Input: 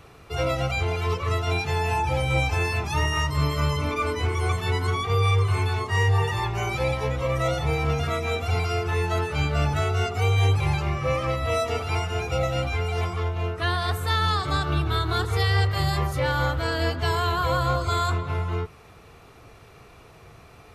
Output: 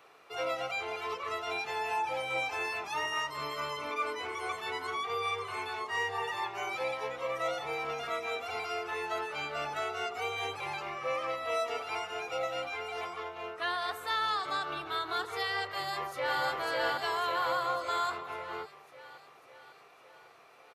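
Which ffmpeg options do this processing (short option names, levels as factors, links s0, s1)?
-filter_complex "[0:a]asplit=2[s0][s1];[s1]afade=t=in:st=15.68:d=0.01,afade=t=out:st=16.42:d=0.01,aecho=0:1:550|1100|1650|2200|2750|3300|3850|4400|4950:0.841395|0.504837|0.302902|0.181741|0.109045|0.0654269|0.0392561|0.0235537|0.0141322[s2];[s0][s2]amix=inputs=2:normalize=0,highpass=530,equalizer=f=9400:t=o:w=1.9:g=-6,volume=0.562"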